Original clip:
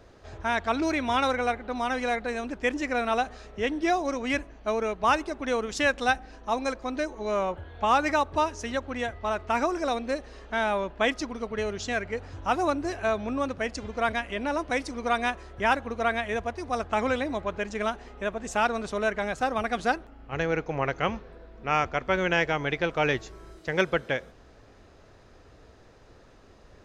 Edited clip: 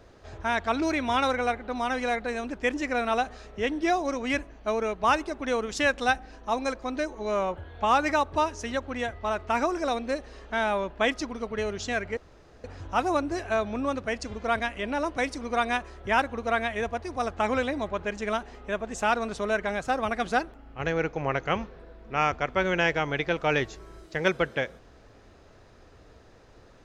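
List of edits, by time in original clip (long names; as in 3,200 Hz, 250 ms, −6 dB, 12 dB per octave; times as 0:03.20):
0:12.17: splice in room tone 0.47 s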